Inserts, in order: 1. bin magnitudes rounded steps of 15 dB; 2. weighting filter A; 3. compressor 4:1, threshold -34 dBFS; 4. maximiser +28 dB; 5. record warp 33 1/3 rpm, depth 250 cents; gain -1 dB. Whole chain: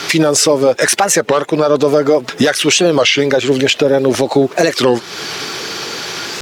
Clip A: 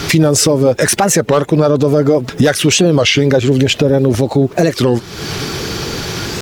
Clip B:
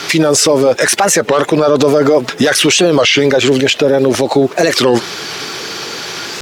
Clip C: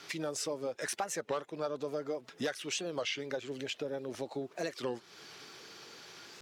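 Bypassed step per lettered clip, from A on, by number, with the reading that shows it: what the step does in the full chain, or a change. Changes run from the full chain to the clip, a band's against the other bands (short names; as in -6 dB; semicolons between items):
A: 2, 125 Hz band +11.0 dB; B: 3, mean gain reduction 6.5 dB; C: 4, crest factor change +5.5 dB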